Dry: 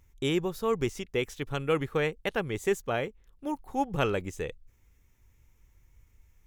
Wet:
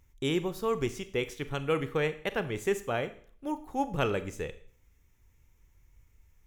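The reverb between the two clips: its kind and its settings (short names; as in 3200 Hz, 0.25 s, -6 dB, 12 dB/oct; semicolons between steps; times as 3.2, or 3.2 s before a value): Schroeder reverb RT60 0.51 s, combs from 26 ms, DRR 11.5 dB; gain -1.5 dB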